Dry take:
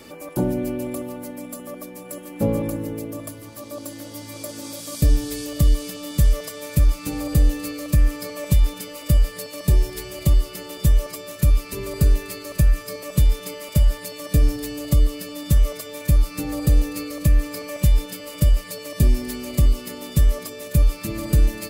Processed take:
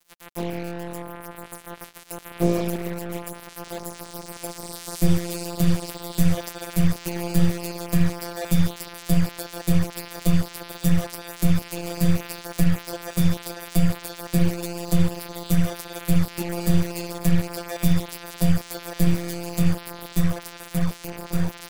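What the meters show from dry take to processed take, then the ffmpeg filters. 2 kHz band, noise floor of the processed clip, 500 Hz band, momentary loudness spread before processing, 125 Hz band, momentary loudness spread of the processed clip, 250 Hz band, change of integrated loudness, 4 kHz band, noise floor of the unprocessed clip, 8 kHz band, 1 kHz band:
+1.0 dB, -43 dBFS, -1.0 dB, 13 LU, -2.5 dB, 12 LU, +4.0 dB, -2.5 dB, -0.5 dB, -39 dBFS, -1.0 dB, +3.5 dB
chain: -af "bandreject=f=60:t=h:w=6,bandreject=f=120:t=h:w=6,bandreject=f=180:t=h:w=6,bandreject=f=240:t=h:w=6,dynaudnorm=f=310:g=13:m=8.5dB,aeval=exprs='val(0)*sin(2*PI*82*n/s)':c=same,afftfilt=real='hypot(re,im)*cos(PI*b)':imag='0':win_size=1024:overlap=0.75,acrusher=bits=4:mix=0:aa=0.5"

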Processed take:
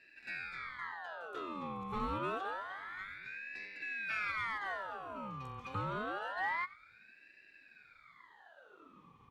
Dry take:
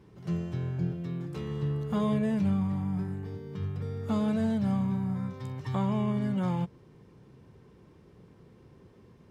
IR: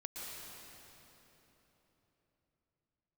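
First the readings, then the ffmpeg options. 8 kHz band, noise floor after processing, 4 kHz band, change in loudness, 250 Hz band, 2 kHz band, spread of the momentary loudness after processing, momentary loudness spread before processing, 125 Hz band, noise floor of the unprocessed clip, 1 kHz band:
n/a, -63 dBFS, -1.5 dB, -9.0 dB, -20.0 dB, +11.0 dB, 23 LU, 9 LU, -20.0 dB, -57 dBFS, +1.5 dB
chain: -filter_complex "[0:a]asplit=3[a][b][c];[a]bandpass=f=530:t=q:w=8,volume=0dB[d];[b]bandpass=f=1.84k:t=q:w=8,volume=-6dB[e];[c]bandpass=f=2.48k:t=q:w=8,volume=-9dB[f];[d][e][f]amix=inputs=3:normalize=0,aemphasis=mode=production:type=50fm,bandreject=f=4.1k:w=5.2,asoftclip=type=tanh:threshold=-38dB,aecho=1:1:91:0.112,aeval=exprs='val(0)*sin(2*PI*1400*n/s+1400*0.55/0.27*sin(2*PI*0.27*n/s))':c=same,volume=12.5dB"

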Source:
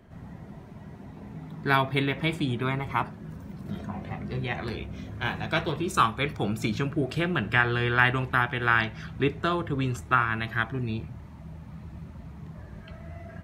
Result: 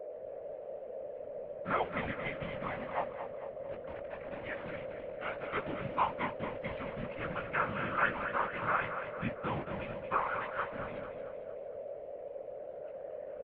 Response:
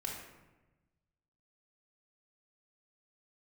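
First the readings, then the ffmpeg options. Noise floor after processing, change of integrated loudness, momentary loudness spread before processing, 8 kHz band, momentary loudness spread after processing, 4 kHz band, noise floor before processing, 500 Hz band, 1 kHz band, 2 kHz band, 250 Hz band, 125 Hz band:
-46 dBFS, -10.5 dB, 20 LU, under -30 dB, 11 LU, -16.5 dB, -45 dBFS, -3.5 dB, -6.5 dB, -11.0 dB, -13.0 dB, -16.5 dB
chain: -filter_complex "[0:a]acrusher=bits=6:dc=4:mix=0:aa=0.000001,flanger=delay=16:depth=3.8:speed=1.1,aeval=exprs='val(0)+0.0178*sin(2*PI*770*n/s)':c=same,afftfilt=real='hypot(re,im)*cos(2*PI*random(0))':imag='hypot(re,im)*sin(2*PI*random(1))':win_size=512:overlap=0.75,asplit=2[a][b];[b]aecho=0:1:226|452|678|904|1130|1356:0.355|0.174|0.0852|0.0417|0.0205|0.01[c];[a][c]amix=inputs=2:normalize=0,highpass=f=340:t=q:w=0.5412,highpass=f=340:t=q:w=1.307,lowpass=f=2.9k:t=q:w=0.5176,lowpass=f=2.9k:t=q:w=0.7071,lowpass=f=2.9k:t=q:w=1.932,afreqshift=-210"

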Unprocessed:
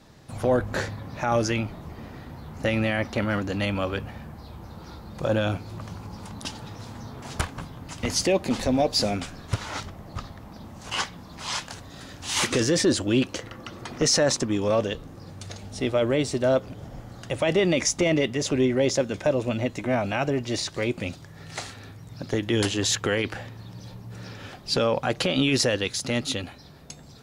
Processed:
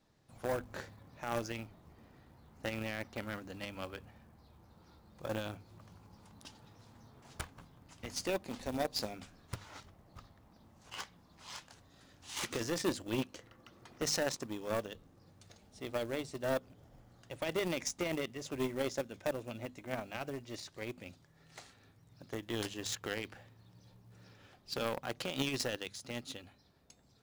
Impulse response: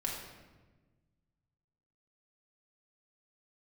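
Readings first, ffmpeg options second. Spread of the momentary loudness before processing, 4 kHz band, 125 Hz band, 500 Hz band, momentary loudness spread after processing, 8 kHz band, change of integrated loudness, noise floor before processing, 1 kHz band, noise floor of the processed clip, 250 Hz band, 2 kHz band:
19 LU, -14.0 dB, -17.0 dB, -14.0 dB, 22 LU, -14.5 dB, -14.0 dB, -46 dBFS, -12.5 dB, -65 dBFS, -15.5 dB, -13.0 dB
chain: -af "acrusher=bits=6:mode=log:mix=0:aa=0.000001,bandreject=f=50:t=h:w=6,bandreject=f=100:t=h:w=6,bandreject=f=150:t=h:w=6,bandreject=f=200:t=h:w=6,bandreject=f=250:t=h:w=6,aeval=exprs='0.316*(cos(1*acos(clip(val(0)/0.316,-1,1)))-cos(1*PI/2))+0.0794*(cos(3*acos(clip(val(0)/0.316,-1,1)))-cos(3*PI/2))':c=same,volume=-7dB"

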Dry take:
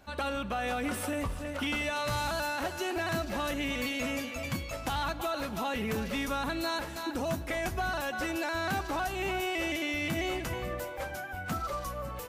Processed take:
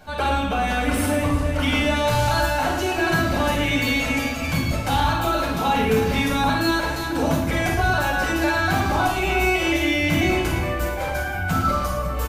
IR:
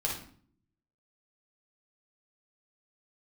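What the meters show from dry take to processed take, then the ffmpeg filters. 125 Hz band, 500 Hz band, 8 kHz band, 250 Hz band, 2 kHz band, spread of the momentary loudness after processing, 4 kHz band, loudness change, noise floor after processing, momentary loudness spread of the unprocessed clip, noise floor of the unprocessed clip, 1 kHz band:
+15.5 dB, +10.5 dB, +9.5 dB, +12.0 dB, +11.5 dB, 4 LU, +10.0 dB, +11.5 dB, -27 dBFS, 5 LU, -40 dBFS, +12.0 dB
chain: -filter_complex "[0:a]asplit=2[a][b];[b]adelay=110.8,volume=-8dB,highshelf=f=4k:g=-2.49[c];[a][c]amix=inputs=2:normalize=0,areverse,acompressor=mode=upward:threshold=-34dB:ratio=2.5,areverse[d];[1:a]atrim=start_sample=2205[e];[d][e]afir=irnorm=-1:irlink=0,volume=5dB"

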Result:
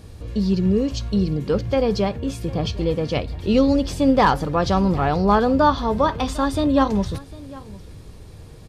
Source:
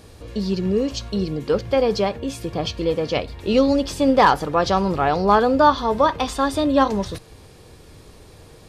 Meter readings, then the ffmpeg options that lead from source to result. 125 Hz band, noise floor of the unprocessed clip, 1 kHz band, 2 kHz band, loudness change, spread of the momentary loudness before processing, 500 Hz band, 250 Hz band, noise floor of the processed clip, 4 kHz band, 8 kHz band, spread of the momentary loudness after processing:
+5.0 dB, -46 dBFS, -2.5 dB, -2.5 dB, -0.5 dB, 11 LU, -2.0 dB, +2.0 dB, -41 dBFS, -2.5 dB, -2.5 dB, 11 LU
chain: -filter_complex "[0:a]bass=f=250:g=9,treble=f=4k:g=0,asplit=2[a][b];[b]aecho=0:1:753:0.0944[c];[a][c]amix=inputs=2:normalize=0,volume=-2.5dB"

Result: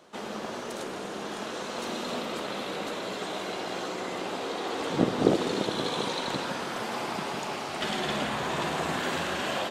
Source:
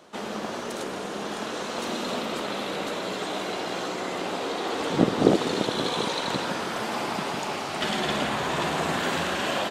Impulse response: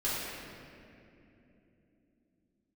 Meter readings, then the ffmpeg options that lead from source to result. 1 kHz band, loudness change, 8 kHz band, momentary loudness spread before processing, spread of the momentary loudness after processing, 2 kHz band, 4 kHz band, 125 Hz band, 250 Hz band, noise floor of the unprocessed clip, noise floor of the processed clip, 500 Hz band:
-3.5 dB, -3.5 dB, -3.5 dB, 8 LU, 8 LU, -3.5 dB, -3.5 dB, -3.5 dB, -3.5 dB, -34 dBFS, -37 dBFS, -3.0 dB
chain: -filter_complex "[0:a]asplit=2[a][b];[1:a]atrim=start_sample=2205,asetrate=57330,aresample=44100[c];[b][c]afir=irnorm=-1:irlink=0,volume=-19dB[d];[a][d]amix=inputs=2:normalize=0,volume=-4dB"

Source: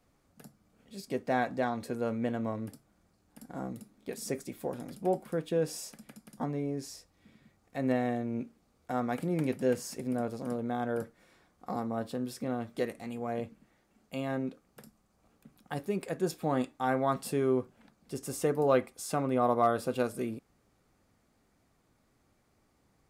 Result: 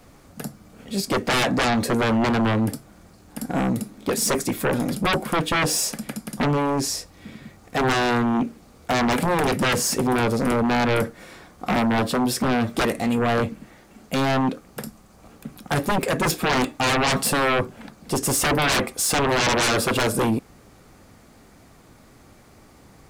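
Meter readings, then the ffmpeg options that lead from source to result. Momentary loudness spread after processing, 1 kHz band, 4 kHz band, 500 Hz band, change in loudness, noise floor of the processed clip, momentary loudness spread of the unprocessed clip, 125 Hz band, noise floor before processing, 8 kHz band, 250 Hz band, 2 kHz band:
14 LU, +11.5 dB, +22.5 dB, +7.5 dB, +11.0 dB, -51 dBFS, 14 LU, +12.0 dB, -71 dBFS, +19.0 dB, +10.5 dB, +18.0 dB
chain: -af "aeval=exprs='0.2*sin(PI/2*8.91*val(0)/0.2)':c=same,volume=-3dB"

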